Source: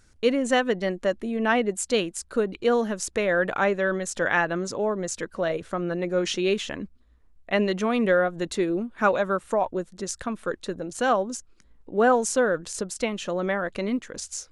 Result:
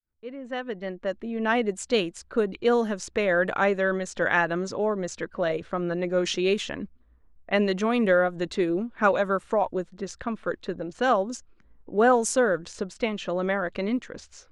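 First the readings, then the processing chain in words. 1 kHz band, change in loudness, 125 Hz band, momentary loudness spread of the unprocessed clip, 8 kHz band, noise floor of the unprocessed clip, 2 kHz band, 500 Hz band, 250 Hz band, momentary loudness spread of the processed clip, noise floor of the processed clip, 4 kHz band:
-0.5 dB, -0.5 dB, 0.0 dB, 9 LU, -4.5 dB, -57 dBFS, -0.5 dB, -0.5 dB, -0.5 dB, 12 LU, -59 dBFS, -1.5 dB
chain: fade-in on the opening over 1.85 s; level-controlled noise filter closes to 1.6 kHz, open at -19.5 dBFS

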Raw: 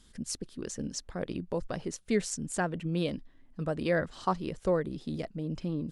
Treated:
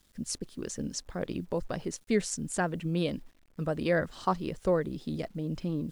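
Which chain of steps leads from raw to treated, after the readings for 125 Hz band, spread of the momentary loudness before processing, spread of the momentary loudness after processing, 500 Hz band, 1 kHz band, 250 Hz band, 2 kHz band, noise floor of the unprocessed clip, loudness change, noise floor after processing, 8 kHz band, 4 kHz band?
+1.0 dB, 8 LU, 8 LU, +1.0 dB, +1.0 dB, +1.0 dB, +1.0 dB, -59 dBFS, +1.0 dB, -62 dBFS, +1.0 dB, +1.0 dB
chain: gate -48 dBFS, range -9 dB; bit crusher 11-bit; trim +1 dB

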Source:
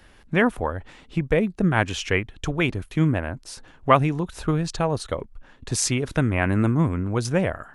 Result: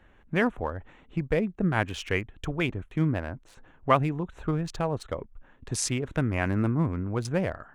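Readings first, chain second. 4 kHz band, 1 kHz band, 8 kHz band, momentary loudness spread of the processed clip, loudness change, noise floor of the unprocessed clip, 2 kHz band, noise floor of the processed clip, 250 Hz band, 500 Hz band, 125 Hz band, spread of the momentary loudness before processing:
-6.5 dB, -5.0 dB, -6.0 dB, 10 LU, -5.0 dB, -52 dBFS, -5.5 dB, -58 dBFS, -5.0 dB, -5.0 dB, -5.0 dB, 10 LU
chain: local Wiener filter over 9 samples; trim -5 dB

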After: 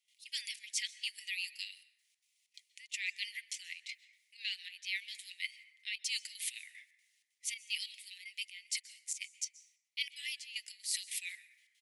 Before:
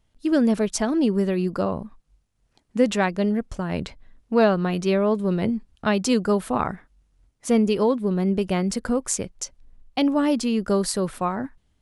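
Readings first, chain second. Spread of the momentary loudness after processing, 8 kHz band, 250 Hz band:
11 LU, -7.5 dB, under -40 dB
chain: steep high-pass 2 kHz 96 dB/octave; comb 6.2 ms, depth 32%; reverse; compression 10:1, threshold -42 dBFS, peak gain reduction 21 dB; reverse; trance gate ".xx.xxx.xxx." 189 bpm -12 dB; plate-style reverb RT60 1.7 s, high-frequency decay 0.3×, pre-delay 115 ms, DRR 15 dB; trim +7.5 dB

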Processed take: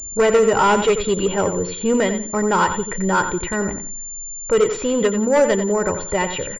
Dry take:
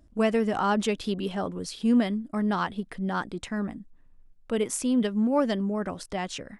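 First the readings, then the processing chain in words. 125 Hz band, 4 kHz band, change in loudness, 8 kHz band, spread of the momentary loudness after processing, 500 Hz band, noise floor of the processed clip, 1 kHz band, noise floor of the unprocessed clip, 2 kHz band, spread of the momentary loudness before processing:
+6.5 dB, +7.5 dB, +8.5 dB, +15.5 dB, 8 LU, +12.5 dB, -32 dBFS, +10.5 dB, -56 dBFS, +11.5 dB, 9 LU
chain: level-controlled noise filter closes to 2.2 kHz, open at -19 dBFS; comb 2.1 ms, depth 69%; in parallel at -9 dB: sine folder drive 9 dB, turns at -11.5 dBFS; on the sum: feedback delay 89 ms, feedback 25%, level -9 dB; class-D stage that switches slowly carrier 7.2 kHz; trim +3 dB

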